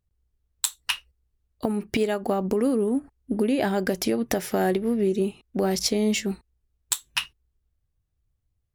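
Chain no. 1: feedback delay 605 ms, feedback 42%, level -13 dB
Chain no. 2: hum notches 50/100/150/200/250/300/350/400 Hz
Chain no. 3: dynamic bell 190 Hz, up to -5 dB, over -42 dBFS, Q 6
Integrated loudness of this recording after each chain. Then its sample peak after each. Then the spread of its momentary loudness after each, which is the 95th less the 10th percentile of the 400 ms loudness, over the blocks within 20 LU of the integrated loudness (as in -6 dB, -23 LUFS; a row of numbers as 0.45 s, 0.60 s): -26.0 LUFS, -26.0 LUFS, -26.5 LUFS; -6.5 dBFS, -7.0 dBFS, -7.0 dBFS; 15 LU, 6 LU, 6 LU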